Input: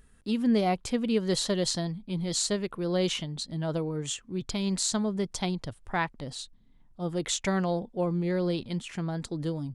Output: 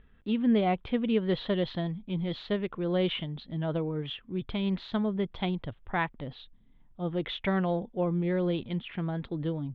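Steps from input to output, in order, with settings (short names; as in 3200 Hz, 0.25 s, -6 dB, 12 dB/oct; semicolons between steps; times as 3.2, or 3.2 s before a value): Chebyshev low-pass 3500 Hz, order 5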